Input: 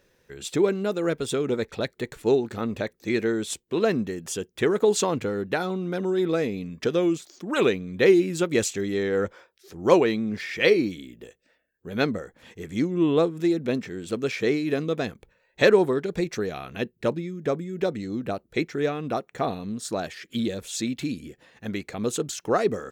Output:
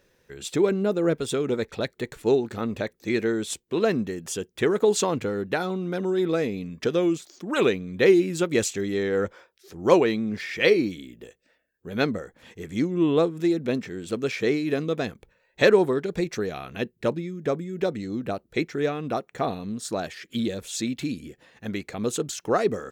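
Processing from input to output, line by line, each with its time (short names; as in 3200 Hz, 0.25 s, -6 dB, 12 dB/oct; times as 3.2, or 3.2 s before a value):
0.71–1.15 tilt shelf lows +4 dB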